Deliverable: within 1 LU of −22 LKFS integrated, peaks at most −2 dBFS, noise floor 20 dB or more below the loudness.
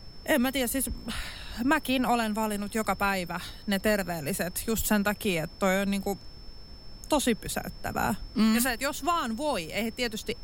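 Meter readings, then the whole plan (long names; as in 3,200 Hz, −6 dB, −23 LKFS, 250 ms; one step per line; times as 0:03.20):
interfering tone 5,300 Hz; level of the tone −51 dBFS; background noise floor −46 dBFS; target noise floor −49 dBFS; integrated loudness −28.5 LKFS; sample peak −13.0 dBFS; target loudness −22.0 LKFS
→ notch filter 5,300 Hz, Q 30
noise reduction from a noise print 6 dB
level +6.5 dB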